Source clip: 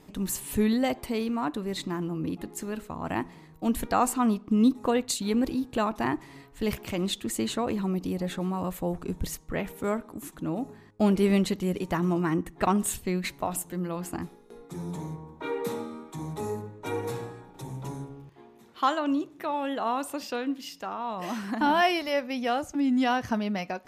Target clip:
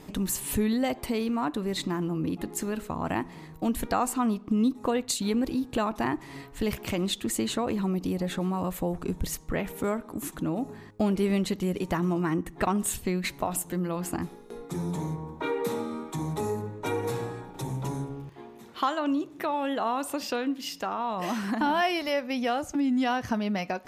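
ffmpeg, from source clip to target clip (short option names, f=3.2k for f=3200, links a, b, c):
-af "acompressor=threshold=-36dB:ratio=2,volume=6.5dB"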